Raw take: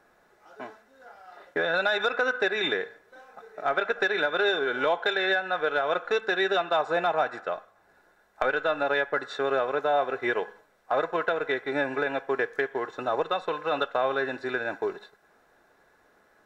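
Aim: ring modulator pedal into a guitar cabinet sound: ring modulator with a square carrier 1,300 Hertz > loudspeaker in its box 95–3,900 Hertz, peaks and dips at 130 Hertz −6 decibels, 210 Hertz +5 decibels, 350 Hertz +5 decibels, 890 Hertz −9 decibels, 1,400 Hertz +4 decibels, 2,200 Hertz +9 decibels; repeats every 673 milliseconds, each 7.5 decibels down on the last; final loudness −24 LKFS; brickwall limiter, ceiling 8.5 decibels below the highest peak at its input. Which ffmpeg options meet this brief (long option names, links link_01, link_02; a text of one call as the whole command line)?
ffmpeg -i in.wav -af "alimiter=limit=-19.5dB:level=0:latency=1,aecho=1:1:673|1346|2019|2692|3365:0.422|0.177|0.0744|0.0312|0.0131,aeval=exprs='val(0)*sgn(sin(2*PI*1300*n/s))':channel_layout=same,highpass=95,equalizer=frequency=130:width_type=q:width=4:gain=-6,equalizer=frequency=210:width_type=q:width=4:gain=5,equalizer=frequency=350:width_type=q:width=4:gain=5,equalizer=frequency=890:width_type=q:width=4:gain=-9,equalizer=frequency=1400:width_type=q:width=4:gain=4,equalizer=frequency=2200:width_type=q:width=4:gain=9,lowpass=frequency=3900:width=0.5412,lowpass=frequency=3900:width=1.3066,volume=2.5dB" out.wav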